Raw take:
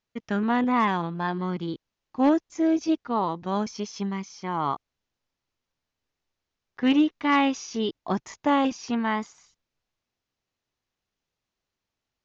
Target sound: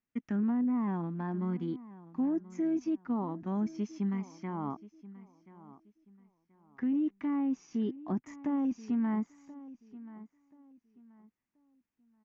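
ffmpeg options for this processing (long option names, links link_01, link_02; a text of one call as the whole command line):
ffmpeg -i in.wav -filter_complex "[0:a]acrossover=split=910[link_01][link_02];[link_02]acompressor=threshold=-42dB:ratio=6[link_03];[link_01][link_03]amix=inputs=2:normalize=0,equalizer=frequency=250:width_type=o:width=1:gain=12,equalizer=frequency=500:width_type=o:width=1:gain=-5,equalizer=frequency=2000:width_type=o:width=1:gain=6,equalizer=frequency=4000:width_type=o:width=1:gain=-11,alimiter=limit=-16dB:level=0:latency=1:release=15,asplit=2[link_04][link_05];[link_05]adelay=1031,lowpass=frequency=4100:poles=1,volume=-17.5dB,asplit=2[link_06][link_07];[link_07]adelay=1031,lowpass=frequency=4100:poles=1,volume=0.28,asplit=2[link_08][link_09];[link_09]adelay=1031,lowpass=frequency=4100:poles=1,volume=0.28[link_10];[link_04][link_06][link_08][link_10]amix=inputs=4:normalize=0,volume=-9dB" out.wav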